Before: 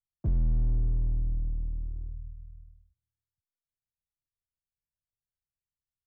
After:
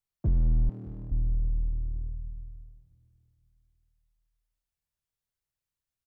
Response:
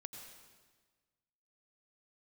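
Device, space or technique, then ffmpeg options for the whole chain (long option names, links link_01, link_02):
saturated reverb return: -filter_complex "[0:a]asplit=2[link_01][link_02];[1:a]atrim=start_sample=2205[link_03];[link_02][link_03]afir=irnorm=-1:irlink=0,asoftclip=type=tanh:threshold=-33dB,volume=-1dB[link_04];[link_01][link_04]amix=inputs=2:normalize=0,asettb=1/sr,asplit=3[link_05][link_06][link_07];[link_05]atrim=end=0.694[link_08];[link_06]atrim=start=0.69:end=1.12,asetpts=PTS-STARTPTS,afade=type=in:duration=0.004:curve=qsin,afade=type=out:start_time=0.426:duration=0.004:curve=qsin,highpass=frequency=150:width=0.5412,highpass=frequency=150:width=1.3066[link_09];[link_07]atrim=start=1.116[link_10];[link_08][link_09]acrossfade=duration=0.004:curve1=hsin:curve2=qsin[link_11];[link_11][link_10]acrossfade=duration=0.004:curve1=qsin:curve2=hsin,aecho=1:1:596|1192|1788:0.112|0.0404|0.0145"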